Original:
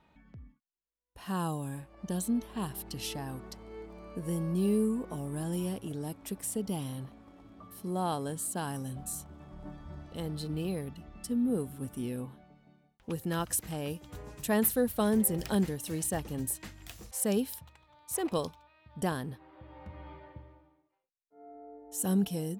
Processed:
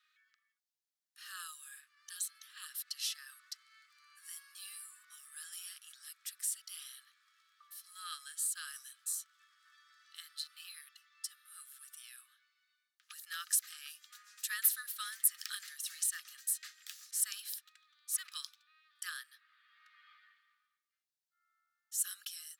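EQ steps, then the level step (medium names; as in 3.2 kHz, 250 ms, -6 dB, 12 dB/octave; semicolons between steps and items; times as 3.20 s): rippled Chebyshev high-pass 1.2 kHz, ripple 6 dB; treble shelf 2.4 kHz +7.5 dB; -2.0 dB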